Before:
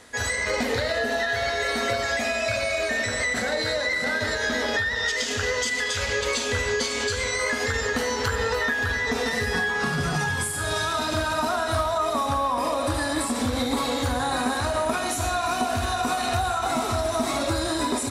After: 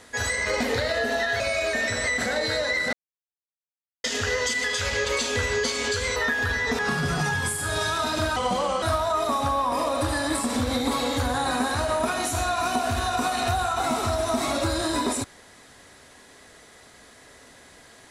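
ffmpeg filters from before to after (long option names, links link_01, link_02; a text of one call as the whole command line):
ffmpeg -i in.wav -filter_complex "[0:a]asplit=8[link_01][link_02][link_03][link_04][link_05][link_06][link_07][link_08];[link_01]atrim=end=1.402[link_09];[link_02]atrim=start=2.558:end=4.09,asetpts=PTS-STARTPTS,afade=type=out:start_time=1.528:duration=0.004:curve=hsin[link_10];[link_03]atrim=start=4.09:end=5.2,asetpts=PTS-STARTPTS,volume=0[link_11];[link_04]atrim=start=5.2:end=7.322,asetpts=PTS-STARTPTS,afade=type=in:duration=0.004:curve=hsin[link_12];[link_05]atrim=start=8.558:end=9.192[link_13];[link_06]atrim=start=9.738:end=11.314[link_14];[link_07]atrim=start=11.31:end=11.68,asetpts=PTS-STARTPTS,asetrate=35280,aresample=44100,atrim=end_sample=20396,asetpts=PTS-STARTPTS[link_15];[link_08]atrim=start=11.676[link_16];[link_10][link_11][link_12]concat=n=3:v=0:a=1[link_17];[link_09][link_17]acrossfade=duration=0.004:curve1=hsin:curve2=hsin[link_18];[link_18][link_13]acrossfade=duration=0.004:curve1=hsin:curve2=hsin[link_19];[link_19][link_14]acrossfade=duration=0.004:curve1=hsin:curve2=hsin[link_20];[link_20][link_15]acrossfade=duration=0.004:curve1=hsin:curve2=hsin[link_21];[link_21][link_16]acrossfade=duration=0.004:curve1=hsin:curve2=hsin" out.wav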